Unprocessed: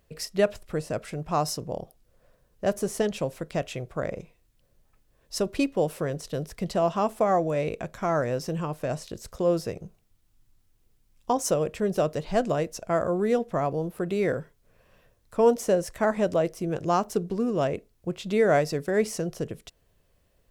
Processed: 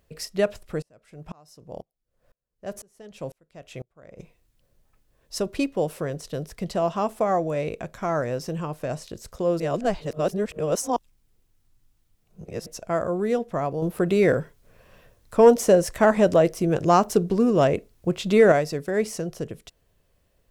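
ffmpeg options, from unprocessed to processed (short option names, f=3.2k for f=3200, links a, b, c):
-filter_complex "[0:a]asettb=1/sr,asplit=3[a][b][c];[a]atrim=end=0.824[d];[b]atrim=start=0.82:end=4.19,asetpts=PTS-STARTPTS,afade=t=in:d=0.004:c=qsin,afade=t=out:st=3.366:d=0.004:c=qsin,aeval=exprs='val(0)*pow(10,-34*if(lt(mod(-2*n/s,1),2*abs(-2)/1000),1-mod(-2*n/s,1)/(2*abs(-2)/1000),(mod(-2*n/s,1)-2*abs(-2)/1000)/(1-2*abs(-2)/1000))/20)':c=same[e];[c]atrim=start=4.186[f];[d][e]acrossfade=d=0.004:c1=hsin:c2=qsin[g];[g][f]acrossfade=d=0.004:c1=qsin:c2=hsin,asettb=1/sr,asplit=3[h][i][j];[h]atrim=end=13.824[k];[i]atrim=start=13.82:end=18.52,asetpts=PTS-STARTPTS,afade=t=in:d=0.004:c=qsin,afade=t=out:st=4.696:d=0.004:c=qsin,acontrast=72[l];[j]atrim=start=18.516[m];[k][l]acrossfade=d=0.004:c1=hsin:c2=qsin[n];[n][m]acrossfade=d=0.004:c1=qsin:c2=hsin,asplit=3[o][p][q];[o]atrim=end=9.602[r];[p]atrim=start=9.598:end=12.662,asetpts=PTS-STARTPTS,areverse[s];[q]atrim=start=12.658[t];[r][s]acrossfade=d=0.004:c1=hsin:c2=hsin[u];[u][t]acrossfade=d=0.004:c1=hsin:c2=hsin"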